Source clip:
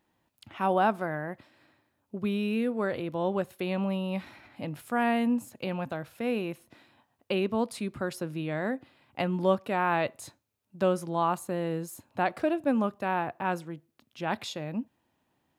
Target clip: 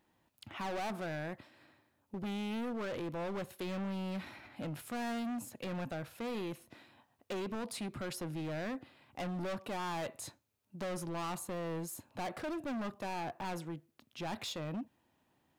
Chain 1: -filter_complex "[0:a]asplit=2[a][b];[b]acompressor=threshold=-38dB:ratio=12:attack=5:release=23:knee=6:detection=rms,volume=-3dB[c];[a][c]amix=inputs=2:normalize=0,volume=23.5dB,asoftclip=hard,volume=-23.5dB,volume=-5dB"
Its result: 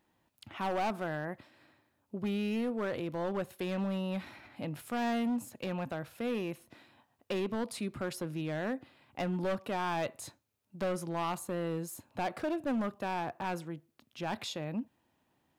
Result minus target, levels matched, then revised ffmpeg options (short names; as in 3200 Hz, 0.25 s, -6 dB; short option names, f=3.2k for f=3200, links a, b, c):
overloaded stage: distortion -6 dB
-filter_complex "[0:a]asplit=2[a][b];[b]acompressor=threshold=-38dB:ratio=12:attack=5:release=23:knee=6:detection=rms,volume=-3dB[c];[a][c]amix=inputs=2:normalize=0,volume=31dB,asoftclip=hard,volume=-31dB,volume=-5dB"